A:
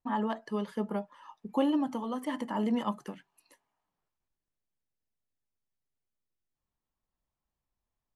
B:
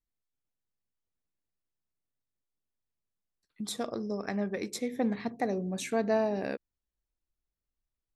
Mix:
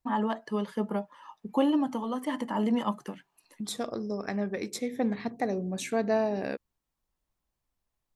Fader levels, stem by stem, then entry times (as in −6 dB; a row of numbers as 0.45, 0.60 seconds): +2.5, +1.0 decibels; 0.00, 0.00 seconds